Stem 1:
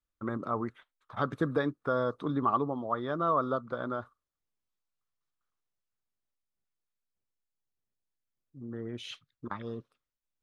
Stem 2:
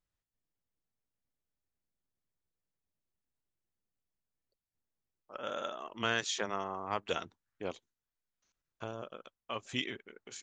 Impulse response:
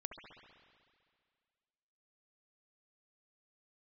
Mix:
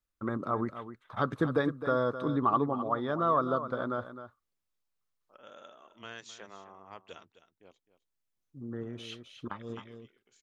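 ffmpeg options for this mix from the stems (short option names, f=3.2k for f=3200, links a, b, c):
-filter_complex "[0:a]volume=1dB,asplit=2[a][b];[b]volume=-11.5dB[c];[1:a]volume=-13dB,afade=t=out:st=7.07:d=0.43:silence=0.473151,asplit=3[d][e][f];[e]volume=-14dB[g];[f]apad=whole_len=459822[h];[a][h]sidechaincompress=threshold=-56dB:ratio=8:attack=16:release=800[i];[c][g]amix=inputs=2:normalize=0,aecho=0:1:260:1[j];[i][d][j]amix=inputs=3:normalize=0"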